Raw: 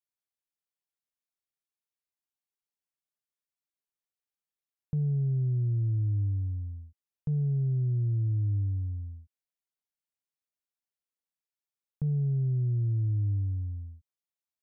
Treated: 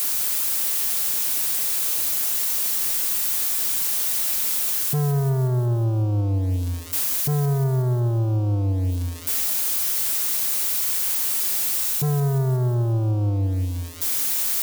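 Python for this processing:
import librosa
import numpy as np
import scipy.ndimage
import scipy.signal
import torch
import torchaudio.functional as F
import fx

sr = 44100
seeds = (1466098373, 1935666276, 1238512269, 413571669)

p1 = x + 0.5 * 10.0 ** (-30.5 / 20.0) * np.diff(np.sign(x), prepend=np.sign(x[:1]))
p2 = fx.dynamic_eq(p1, sr, hz=130.0, q=3.0, threshold_db=-38.0, ratio=4.0, max_db=5)
p3 = scipy.signal.sosfilt(scipy.signal.butter(2, 66.0, 'highpass', fs=sr, output='sos'), p2)
p4 = fx.low_shelf(p3, sr, hz=220.0, db=-6.5)
p5 = p4 + 0.7 * np.pad(p4, (int(7.3 * sr / 1000.0), 0))[:len(p4)]
p6 = fx.rider(p5, sr, range_db=10, speed_s=0.5)
p7 = p5 + F.gain(torch.from_numpy(p6), -2.0).numpy()
p8 = fx.leveller(p7, sr, passes=3)
p9 = 10.0 ** (-19.0 / 20.0) * np.tanh(p8 / 10.0 ** (-19.0 / 20.0))
y = p9 + fx.echo_thinned(p9, sr, ms=182, feedback_pct=59, hz=160.0, wet_db=-13, dry=0)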